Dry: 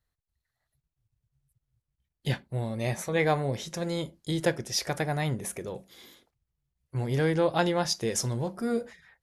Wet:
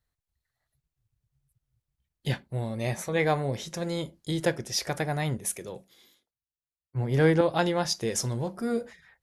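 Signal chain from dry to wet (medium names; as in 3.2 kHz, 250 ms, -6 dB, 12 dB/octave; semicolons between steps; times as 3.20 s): 5.37–7.41 s: three bands expanded up and down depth 70%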